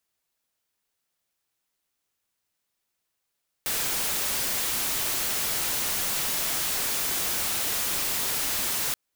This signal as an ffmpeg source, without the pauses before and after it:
ffmpeg -f lavfi -i "anoisesrc=color=white:amplitude=0.073:duration=5.28:sample_rate=44100:seed=1" out.wav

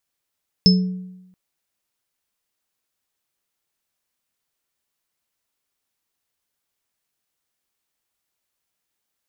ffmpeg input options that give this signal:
ffmpeg -f lavfi -i "aevalsrc='0.355*pow(10,-3*t/0.96)*sin(2*PI*184*t)+0.0708*pow(10,-3*t/0.68)*sin(2*PI*431*t)+0.355*pow(10,-3*t/0.23)*sin(2*PI*5230*t)':duration=0.68:sample_rate=44100" out.wav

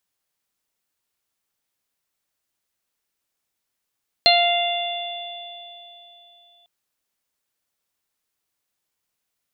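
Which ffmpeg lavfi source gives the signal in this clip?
ffmpeg -f lavfi -i "aevalsrc='0.178*pow(10,-3*t/3.13)*sin(2*PI*696*t)+0.02*pow(10,-3*t/1.64)*sin(2*PI*1392*t)+0.0794*pow(10,-3*t/2.3)*sin(2*PI*2088*t)+0.1*pow(10,-3*t/2.72)*sin(2*PI*2784*t)+0.112*pow(10,-3*t/3.97)*sin(2*PI*3480*t)+0.335*pow(10,-3*t/0.29)*sin(2*PI*4176*t)':duration=2.4:sample_rate=44100" out.wav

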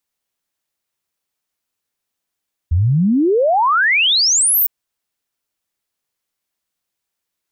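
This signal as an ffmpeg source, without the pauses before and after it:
ffmpeg -f lavfi -i "aevalsrc='0.282*clip(min(t,1.96-t)/0.01,0,1)*sin(2*PI*77*1.96/log(16000/77)*(exp(log(16000/77)*t/1.96)-1))':duration=1.96:sample_rate=44100" out.wav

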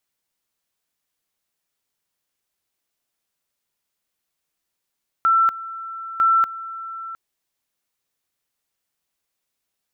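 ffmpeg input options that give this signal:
ffmpeg -f lavfi -i "aevalsrc='pow(10,(-13-16.5*gte(mod(t,0.95),0.24))/20)*sin(2*PI*1340*t)':duration=1.9:sample_rate=44100" out.wav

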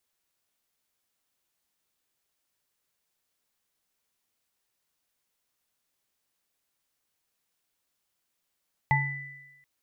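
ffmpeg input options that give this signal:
ffmpeg -f lavfi -i "aevalsrc='0.0794*pow(10,-3*t/0.86)*sin(2*PI*139*t)+0.1*pow(10,-3*t/0.31)*sin(2*PI*875*t)+0.0668*pow(10,-3*t/1.23)*sin(2*PI*1990*t)':duration=0.73:sample_rate=44100" out.wav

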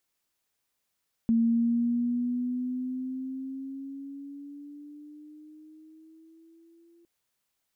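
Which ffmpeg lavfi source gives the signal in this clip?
ffmpeg -f lavfi -i "aevalsrc='pow(10,(-19.5-37*t/5.76)/20)*sin(2*PI*228*5.76/(7*log(2)/12)*(exp(7*log(2)/12*t/5.76)-1))':duration=5.76:sample_rate=44100" out.wav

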